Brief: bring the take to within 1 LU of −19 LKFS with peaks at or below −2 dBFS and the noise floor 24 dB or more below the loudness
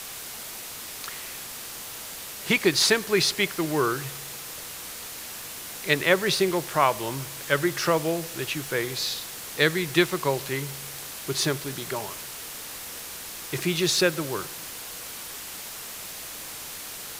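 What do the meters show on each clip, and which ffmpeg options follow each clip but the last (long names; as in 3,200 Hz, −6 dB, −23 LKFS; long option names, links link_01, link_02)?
background noise floor −38 dBFS; target noise floor −51 dBFS; integrated loudness −27.0 LKFS; sample peak −5.0 dBFS; target loudness −19.0 LKFS
→ -af "afftdn=noise_reduction=13:noise_floor=-38"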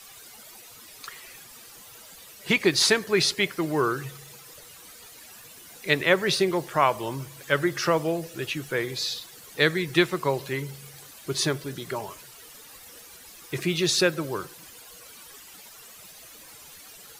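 background noise floor −48 dBFS; target noise floor −49 dBFS
→ -af "afftdn=noise_reduction=6:noise_floor=-48"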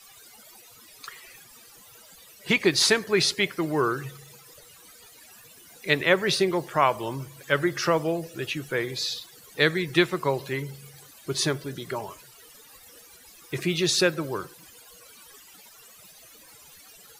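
background noise floor −51 dBFS; integrated loudness −25.0 LKFS; sample peak −5.0 dBFS; target loudness −19.0 LKFS
→ -af "volume=6dB,alimiter=limit=-2dB:level=0:latency=1"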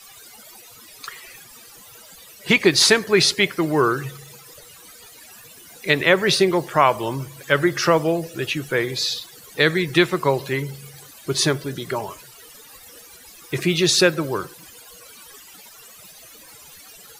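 integrated loudness −19.5 LKFS; sample peak −2.0 dBFS; background noise floor −45 dBFS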